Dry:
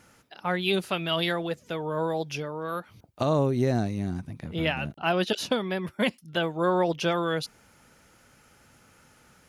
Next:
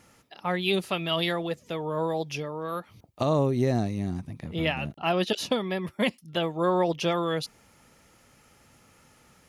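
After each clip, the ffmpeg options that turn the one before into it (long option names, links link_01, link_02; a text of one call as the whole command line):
ffmpeg -i in.wav -af "bandreject=frequency=1500:width=8" out.wav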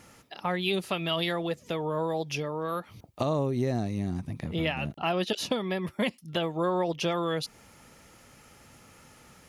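ffmpeg -i in.wav -af "acompressor=threshold=-34dB:ratio=2,volume=4dB" out.wav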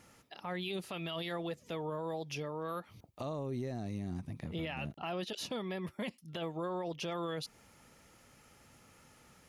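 ffmpeg -i in.wav -af "alimiter=limit=-23dB:level=0:latency=1:release=11,volume=-7dB" out.wav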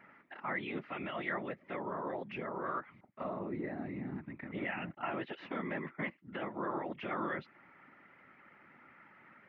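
ffmpeg -i in.wav -af "afftfilt=real='hypot(re,im)*cos(2*PI*random(0))':imag='hypot(re,im)*sin(2*PI*random(1))':win_size=512:overlap=0.75,highpass=210,equalizer=frequency=470:width_type=q:width=4:gain=-8,equalizer=frequency=710:width_type=q:width=4:gain=-3,equalizer=frequency=1400:width_type=q:width=4:gain=4,equalizer=frequency=2000:width_type=q:width=4:gain=9,lowpass=frequency=2200:width=0.5412,lowpass=frequency=2200:width=1.3066,volume=8.5dB" out.wav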